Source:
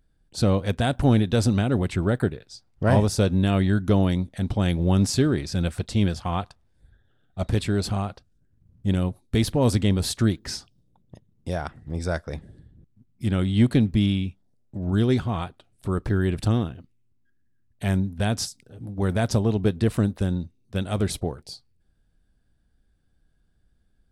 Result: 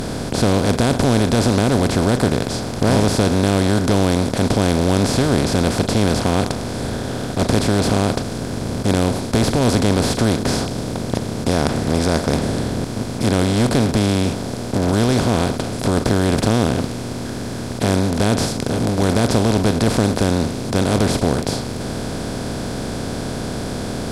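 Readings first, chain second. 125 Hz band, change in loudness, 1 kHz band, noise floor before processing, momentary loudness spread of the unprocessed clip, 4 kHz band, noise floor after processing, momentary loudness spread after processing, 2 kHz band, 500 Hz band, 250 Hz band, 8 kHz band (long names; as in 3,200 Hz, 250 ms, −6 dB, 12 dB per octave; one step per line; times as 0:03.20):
+4.5 dB, +5.5 dB, +10.5 dB, −65 dBFS, 13 LU, +9.5 dB, −26 dBFS, 9 LU, +9.0 dB, +9.0 dB, +7.0 dB, +11.0 dB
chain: compressor on every frequency bin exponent 0.2
level −2.5 dB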